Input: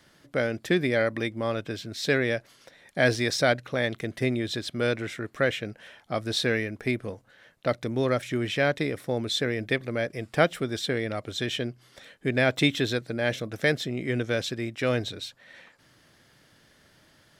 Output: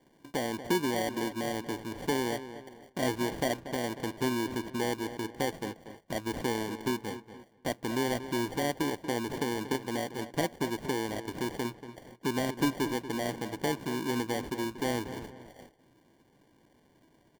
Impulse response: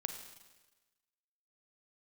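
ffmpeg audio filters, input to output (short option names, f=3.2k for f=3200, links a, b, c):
-filter_complex "[0:a]asuperstop=centerf=1500:order=4:qfactor=2.8,equalizer=f=310:w=0.89:g=12,acompressor=threshold=-51dB:ratio=1.5,acrusher=samples=34:mix=1:aa=0.000001,asplit=2[a][b];[b]adelay=235,lowpass=f=3.2k:p=1,volume=-12dB,asplit=2[c][d];[d]adelay=235,lowpass=f=3.2k:p=1,volume=0.39,asplit=2[e][f];[f]adelay=235,lowpass=f=3.2k:p=1,volume=0.39,asplit=2[g][h];[h]adelay=235,lowpass=f=3.2k:p=1,volume=0.39[i];[c][e][g][i]amix=inputs=4:normalize=0[j];[a][j]amix=inputs=2:normalize=0,agate=range=-9dB:threshold=-50dB:ratio=16:detection=peak"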